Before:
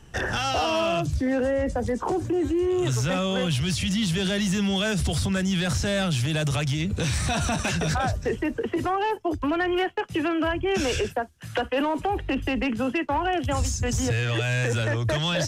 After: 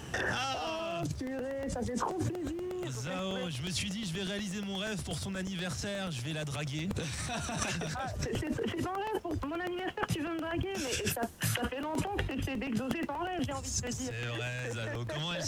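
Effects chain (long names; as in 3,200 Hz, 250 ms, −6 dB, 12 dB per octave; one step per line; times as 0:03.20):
compressor whose output falls as the input rises −34 dBFS, ratio −1
0:10.69–0:11.65: high-shelf EQ 8,300 Hz +11.5 dB
background noise brown −46 dBFS
high-pass filter 62 Hz
low-shelf EQ 83 Hz −8 dB
regular buffer underruns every 0.12 s, samples 64, repeat, from 0:00.31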